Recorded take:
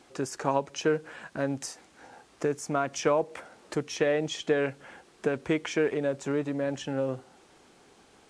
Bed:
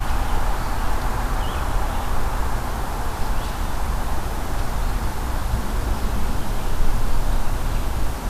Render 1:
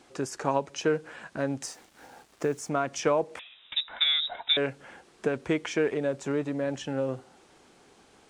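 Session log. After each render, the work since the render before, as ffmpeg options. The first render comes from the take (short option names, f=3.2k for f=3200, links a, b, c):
-filter_complex "[0:a]asettb=1/sr,asplit=3[a][b][c];[a]atrim=end=1.634[d];[b]atrim=start=1.63:end=2.69,asetpts=PTS-STARTPTS,afade=t=in:d=0.004:c=qsin,afade=t=out:st=1.056:d=0.004:c=qsin,acrusher=bits=8:mix=0:aa=0.5[e];[c]atrim=start=2.686[f];[d][e]acrossfade=d=0.004:c1=hsin:c2=qsin[g];[g][f]acrossfade=d=0.004:c1=qsin:c2=hsin,asettb=1/sr,asplit=3[h][i][j];[h]atrim=end=3.394[k];[i]atrim=start=3.39:end=4.57,asetpts=PTS-STARTPTS,afade=t=in:d=0.004:c=qsin,afade=t=out:st=1.176:d=0.004:c=qsin,lowpass=f=3.4k:t=q:w=0.5098,lowpass=f=3.4k:t=q:w=0.6013,lowpass=f=3.4k:t=q:w=0.9,lowpass=f=3.4k:t=q:w=2.563,afreqshift=-4000[l];[j]atrim=start=4.566[m];[k][l]acrossfade=d=0.004:c1=hsin:c2=qsin[n];[n][m]acrossfade=d=0.004:c1=qsin:c2=hsin"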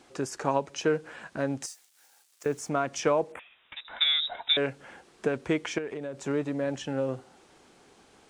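-filter_complex "[0:a]asettb=1/sr,asplit=3[a][b][c];[a]atrim=end=1.664[d];[b]atrim=start=1.66:end=2.46,asetpts=PTS-STARTPTS,afade=t=in:d=0.004:c=qsin,afade=t=out:st=0.796:d=0.004:c=qsin,aderivative[e];[c]atrim=start=2.456[f];[d][e]acrossfade=d=0.004:c1=hsin:c2=qsin[g];[g][f]acrossfade=d=0.004:c1=qsin:c2=hsin,asettb=1/sr,asplit=3[h][i][j];[h]atrim=end=3.324[k];[i]atrim=start=3.32:end=3.85,asetpts=PTS-STARTPTS,afade=t=in:d=0.004:c=qsin,afade=t=out:st=0.526:d=0.004:c=qsin,asuperstop=centerf=5000:order=4:qfactor=0.74[l];[j]atrim=start=3.846[m];[k][l]acrossfade=d=0.004:c1=hsin:c2=qsin[n];[n][m]acrossfade=d=0.004:c1=qsin:c2=hsin,asettb=1/sr,asplit=3[o][p][q];[o]atrim=end=5.784[r];[p]atrim=start=5.78:end=6.2,asetpts=PTS-STARTPTS,afade=t=in:d=0.004:c=qsin,afade=t=out:st=0.416:d=0.004:c=qsin,acompressor=threshold=-34dB:ratio=3:attack=3.2:release=140:knee=1:detection=peak[s];[q]atrim=start=6.196[t];[r][s]acrossfade=d=0.004:c1=hsin:c2=qsin[u];[u][t]acrossfade=d=0.004:c1=qsin:c2=hsin"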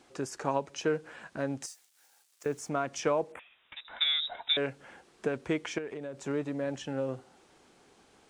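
-af "volume=-3.5dB"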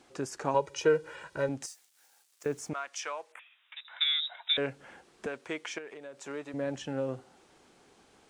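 -filter_complex "[0:a]asettb=1/sr,asplit=3[a][b][c];[a]atrim=end=0.544[d];[b]atrim=start=0.54:end=1.49,asetpts=PTS-STARTPTS,afade=t=in:d=0.004:c=qsin,afade=t=out:st=0.946:d=0.004:c=qsin,aecho=1:1:2.1:0.93,atrim=end_sample=41895[e];[c]atrim=start=1.486[f];[d][e]acrossfade=d=0.004:c1=hsin:c2=qsin[g];[g][f]acrossfade=d=0.004:c1=qsin:c2=hsin,asettb=1/sr,asplit=3[h][i][j];[h]atrim=end=2.734[k];[i]atrim=start=2.73:end=4.58,asetpts=PTS-STARTPTS,afade=t=in:d=0.004:c=qsin,afade=t=out:st=1.846:d=0.004:c=qsin,highpass=1.2k[l];[j]atrim=start=4.576[m];[k][l]acrossfade=d=0.004:c1=hsin:c2=qsin[n];[n][m]acrossfade=d=0.004:c1=qsin:c2=hsin,asettb=1/sr,asplit=3[o][p][q];[o]atrim=end=5.264[r];[p]atrim=start=5.26:end=6.54,asetpts=PTS-STARTPTS,afade=t=in:d=0.004:c=qsin,afade=t=out:st=1.276:d=0.004:c=qsin,highpass=f=790:p=1[s];[q]atrim=start=6.536[t];[r][s]acrossfade=d=0.004:c1=hsin:c2=qsin[u];[u][t]acrossfade=d=0.004:c1=qsin:c2=hsin"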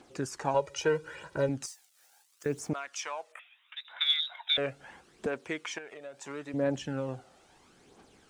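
-af "aphaser=in_gain=1:out_gain=1:delay=1.7:decay=0.47:speed=0.75:type=triangular"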